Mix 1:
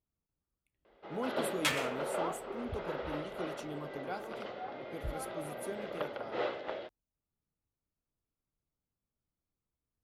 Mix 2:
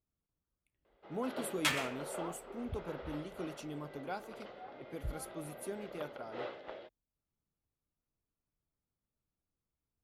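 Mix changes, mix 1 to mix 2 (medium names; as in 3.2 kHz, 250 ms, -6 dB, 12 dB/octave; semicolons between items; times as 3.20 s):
first sound -6.5 dB; reverb: off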